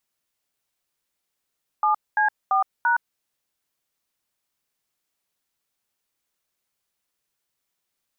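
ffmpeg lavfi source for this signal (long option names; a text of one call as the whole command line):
ffmpeg -f lavfi -i "aevalsrc='0.106*clip(min(mod(t,0.34),0.116-mod(t,0.34))/0.002,0,1)*(eq(floor(t/0.34),0)*(sin(2*PI*852*mod(t,0.34))+sin(2*PI*1209*mod(t,0.34)))+eq(floor(t/0.34),1)*(sin(2*PI*852*mod(t,0.34))+sin(2*PI*1633*mod(t,0.34)))+eq(floor(t/0.34),2)*(sin(2*PI*770*mod(t,0.34))+sin(2*PI*1209*mod(t,0.34)))+eq(floor(t/0.34),3)*(sin(2*PI*941*mod(t,0.34))+sin(2*PI*1477*mod(t,0.34))))':duration=1.36:sample_rate=44100" out.wav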